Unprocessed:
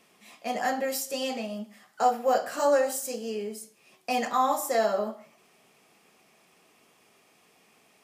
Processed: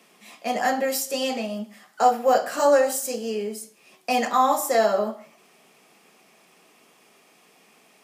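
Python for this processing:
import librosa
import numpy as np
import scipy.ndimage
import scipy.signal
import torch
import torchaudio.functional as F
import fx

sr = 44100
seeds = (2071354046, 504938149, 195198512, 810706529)

y = scipy.signal.sosfilt(scipy.signal.butter(4, 150.0, 'highpass', fs=sr, output='sos'), x)
y = y * librosa.db_to_amplitude(5.0)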